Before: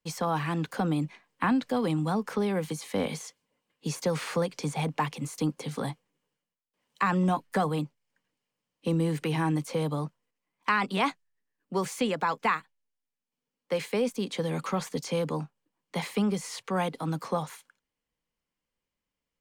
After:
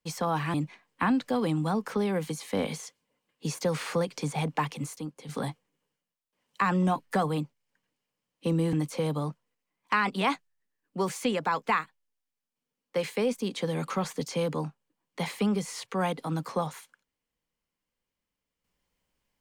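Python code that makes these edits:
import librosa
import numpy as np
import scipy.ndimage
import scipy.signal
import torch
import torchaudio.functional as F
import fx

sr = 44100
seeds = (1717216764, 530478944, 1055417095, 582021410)

y = fx.edit(x, sr, fx.cut(start_s=0.54, length_s=0.41),
    fx.clip_gain(start_s=5.37, length_s=0.33, db=-9.0),
    fx.cut(start_s=9.14, length_s=0.35), tone=tone)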